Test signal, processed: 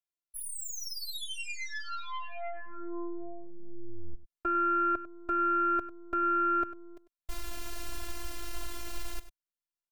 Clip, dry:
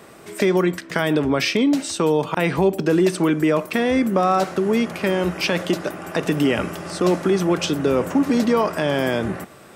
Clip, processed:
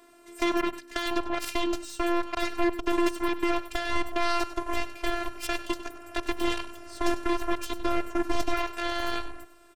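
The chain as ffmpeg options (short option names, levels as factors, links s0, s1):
-af "aeval=exprs='0.531*(cos(1*acos(clip(val(0)/0.531,-1,1)))-cos(1*PI/2))+0.075*(cos(6*acos(clip(val(0)/0.531,-1,1)))-cos(6*PI/2))+0.133*(cos(7*acos(clip(val(0)/0.531,-1,1)))-cos(7*PI/2))+0.0596*(cos(8*acos(clip(val(0)/0.531,-1,1)))-cos(8*PI/2))':c=same,afftfilt=real='hypot(re,im)*cos(PI*b)':imag='0':win_size=512:overlap=0.75,asubboost=boost=3:cutoff=79,aecho=1:1:98:0.188,volume=0.531"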